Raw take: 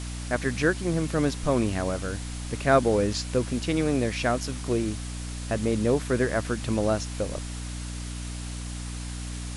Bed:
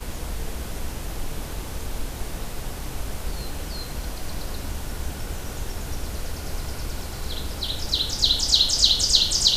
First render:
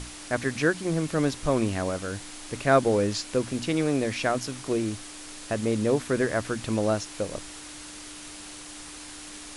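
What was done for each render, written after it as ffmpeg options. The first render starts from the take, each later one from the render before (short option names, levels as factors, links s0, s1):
-af "bandreject=f=60:t=h:w=6,bandreject=f=120:t=h:w=6,bandreject=f=180:t=h:w=6,bandreject=f=240:t=h:w=6"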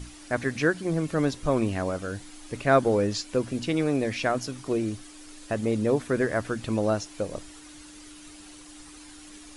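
-af "afftdn=nr=9:nf=-42"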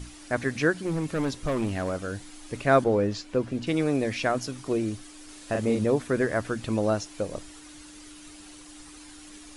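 -filter_complex "[0:a]asettb=1/sr,asplit=3[s0][s1][s2];[s0]atrim=end=0.724[s3];[s1]atrim=start=0.72:end=2.06,asetpts=PTS-STARTPTS,afade=t=in:d=0.004:c=qsin,afade=t=out:st=1.336:d=0.004:c=qsin,volume=13.3,asoftclip=hard,volume=0.075[s4];[s2]atrim=start=2.056[s5];[s3][s4]acrossfade=d=0.004:c1=hsin:c2=qsin[s6];[s6][s5]acrossfade=d=0.004:c1=qsin:c2=hsin,asettb=1/sr,asplit=3[s7][s8][s9];[s7]atrim=end=2.844[s10];[s8]atrim=start=2.84:end=3.67,asetpts=PTS-STARTPTS,afade=t=in:d=0.004:c=qsin,afade=t=out:st=0.826:d=0.004:c=qsin,lowpass=f=2700:p=1[s11];[s9]atrim=start=3.666[s12];[s10][s11]acrossfade=d=0.004:c1=hsin:c2=qsin[s13];[s13][s12]acrossfade=d=0.004:c1=qsin:c2=hsin,asettb=1/sr,asplit=3[s14][s15][s16];[s14]atrim=end=5.254[s17];[s15]atrim=start=5.25:end=5.85,asetpts=PTS-STARTPTS,afade=t=in:d=0.004:c=qsin,afade=t=out:st=0.596:d=0.004:c=qsin,asplit=2[s18][s19];[s19]adelay=39,volume=0.668[s20];[s18][s20]amix=inputs=2:normalize=0,atrim=end_sample=26460[s21];[s16]atrim=start=5.846[s22];[s17][s21]acrossfade=d=0.004:c1=hsin:c2=qsin[s23];[s23][s22]acrossfade=d=0.004:c1=qsin:c2=hsin"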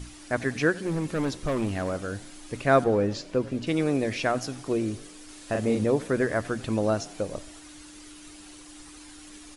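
-filter_complex "[0:a]asplit=5[s0][s1][s2][s3][s4];[s1]adelay=89,afreqshift=35,volume=0.0891[s5];[s2]adelay=178,afreqshift=70,volume=0.0479[s6];[s3]adelay=267,afreqshift=105,volume=0.026[s7];[s4]adelay=356,afreqshift=140,volume=0.014[s8];[s0][s5][s6][s7][s8]amix=inputs=5:normalize=0"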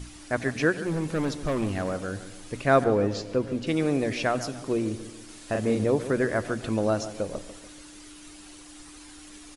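-filter_complex "[0:a]asplit=2[s0][s1];[s1]adelay=144,lowpass=f=2000:p=1,volume=0.224,asplit=2[s2][s3];[s3]adelay=144,lowpass=f=2000:p=1,volume=0.47,asplit=2[s4][s5];[s5]adelay=144,lowpass=f=2000:p=1,volume=0.47,asplit=2[s6][s7];[s7]adelay=144,lowpass=f=2000:p=1,volume=0.47,asplit=2[s8][s9];[s9]adelay=144,lowpass=f=2000:p=1,volume=0.47[s10];[s0][s2][s4][s6][s8][s10]amix=inputs=6:normalize=0"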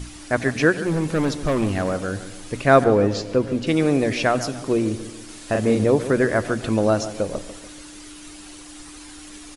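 -af "volume=2"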